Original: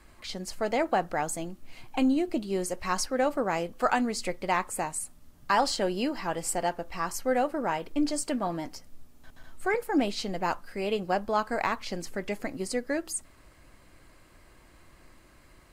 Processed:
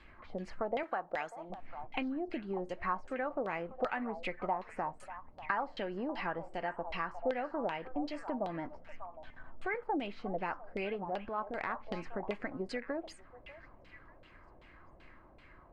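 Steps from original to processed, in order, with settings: 0.83–1.5 RIAA curve recording; compressor 6:1, threshold -32 dBFS, peak gain reduction 13 dB; on a send: delay with a stepping band-pass 0.592 s, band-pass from 860 Hz, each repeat 1.4 oct, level -9 dB; on the sum: LFO low-pass saw down 2.6 Hz 570–3400 Hz; 11.04–11.82 transient shaper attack -8 dB, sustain +2 dB; gain -3 dB

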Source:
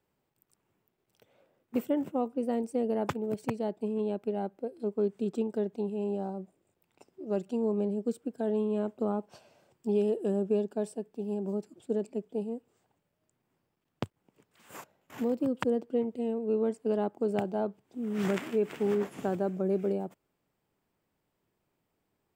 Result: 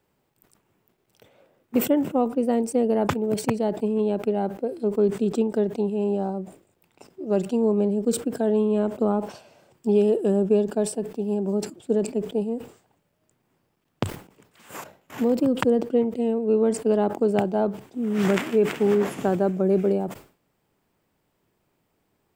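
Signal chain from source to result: sustainer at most 140 dB/s; gain +8 dB

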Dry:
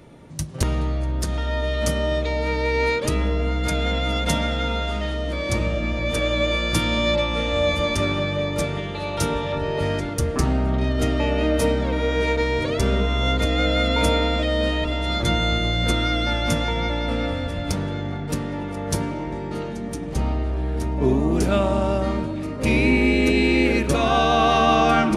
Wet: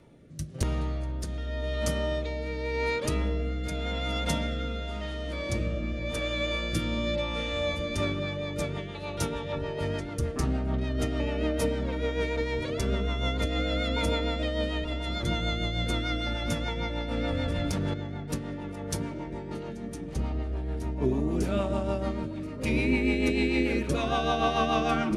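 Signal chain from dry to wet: rotary speaker horn 0.9 Hz, later 6.7 Hz, at 7.62; 17.17–17.94 fast leveller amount 100%; gain -6 dB

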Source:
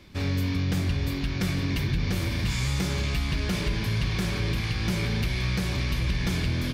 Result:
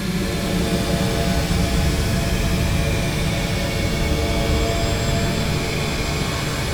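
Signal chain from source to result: whine 560 Hz -41 dBFS; Paulstretch 41×, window 0.05 s, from 4.22; shimmer reverb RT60 3 s, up +7 st, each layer -2 dB, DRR 2.5 dB; gain +3 dB

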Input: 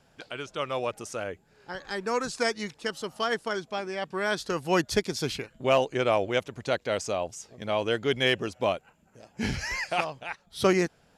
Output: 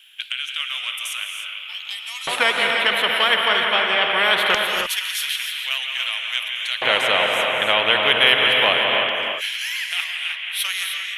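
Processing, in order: EQ curve 150 Hz 0 dB, 330 Hz -14 dB, 3200 Hz +15 dB, 4800 Hz -27 dB, 6900 Hz -27 dB, 11000 Hz -5 dB; in parallel at -1 dB: compressor, threshold -30 dBFS, peak gain reduction 18.5 dB; 1.25–2.32 on the sum: fixed phaser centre 310 Hz, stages 8; on a send: analogue delay 0.171 s, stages 4096, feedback 81%, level -10 dB; on the sum: LFO high-pass square 0.22 Hz 520–6000 Hz; non-linear reverb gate 0.33 s rising, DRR 5.5 dB; spectral compressor 2:1; gain -1 dB

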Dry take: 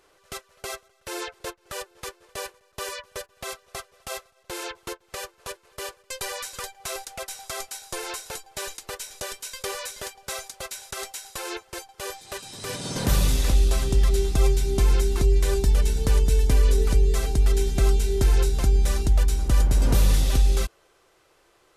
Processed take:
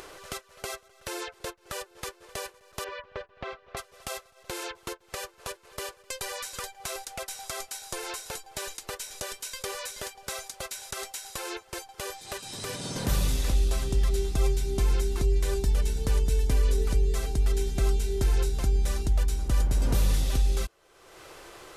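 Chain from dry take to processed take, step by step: 2.84–3.77 Bessel low-pass 2300 Hz, order 4; upward compressor, threshold -25 dBFS; gain -5 dB

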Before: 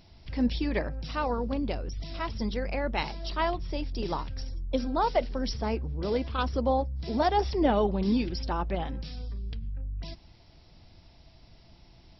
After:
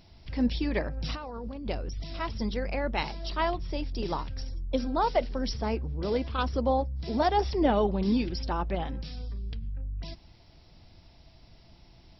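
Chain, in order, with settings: 0.97–1.66 negative-ratio compressor -36 dBFS, ratio -1

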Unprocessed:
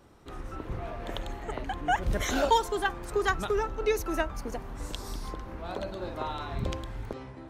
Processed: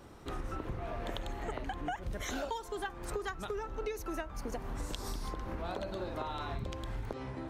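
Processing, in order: compressor 16:1, threshold -38 dBFS, peak gain reduction 21 dB; gain +4 dB

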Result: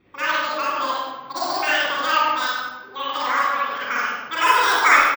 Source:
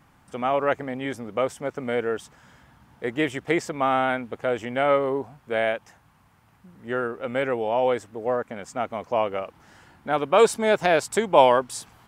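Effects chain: repeated pitch sweeps -1.5 st, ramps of 0.292 s; low-pass opened by the level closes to 850 Hz, open at -17 dBFS; speakerphone echo 0.24 s, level -7 dB; reverb RT60 2.3 s, pre-delay 81 ms, DRR -5 dB; careless resampling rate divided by 4×, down filtered, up zero stuff; speed mistake 33 rpm record played at 78 rpm; gain -5 dB

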